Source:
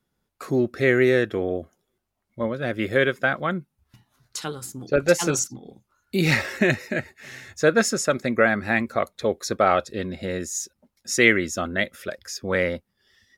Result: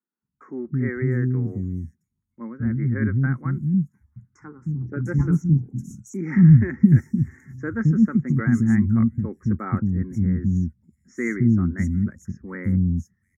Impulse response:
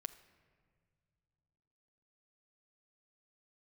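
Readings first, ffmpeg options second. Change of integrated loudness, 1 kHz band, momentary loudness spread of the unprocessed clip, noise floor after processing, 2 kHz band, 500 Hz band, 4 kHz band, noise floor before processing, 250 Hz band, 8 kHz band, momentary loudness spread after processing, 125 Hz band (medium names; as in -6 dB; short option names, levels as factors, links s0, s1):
+1.5 dB, -12.5 dB, 14 LU, -78 dBFS, -11.5 dB, -13.5 dB, under -30 dB, -78 dBFS, +6.5 dB, under -20 dB, 17 LU, +12.5 dB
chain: -filter_complex "[0:a]highpass=67,asubboost=boost=5.5:cutoff=230,asuperstop=centerf=3500:order=12:qfactor=0.96,agate=range=0.501:threshold=0.00891:ratio=16:detection=peak,firequalizer=gain_entry='entry(230,0);entry(620,-26);entry(900,-11);entry(9200,-24)':delay=0.05:min_phase=1,acrossover=split=300|5400[s0][s1][s2];[s0]adelay=220[s3];[s2]adelay=700[s4];[s3][s1][s4]amix=inputs=3:normalize=0,volume=1.33"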